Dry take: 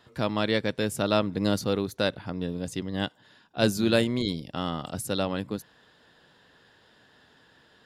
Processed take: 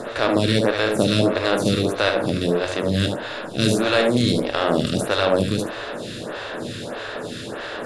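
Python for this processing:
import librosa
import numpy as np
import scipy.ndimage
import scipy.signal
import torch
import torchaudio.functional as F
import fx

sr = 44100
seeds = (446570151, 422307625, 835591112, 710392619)

p1 = fx.bin_compress(x, sr, power=0.4)
p2 = scipy.signal.sosfilt(scipy.signal.butter(4, 10000.0, 'lowpass', fs=sr, output='sos'), p1)
p3 = p2 + fx.echo_single(p2, sr, ms=74, db=-5.5, dry=0)
p4 = fx.room_shoebox(p3, sr, seeds[0], volume_m3=64.0, walls='mixed', distance_m=0.3)
p5 = fx.stagger_phaser(p4, sr, hz=1.6)
y = p5 * 10.0 ** (4.0 / 20.0)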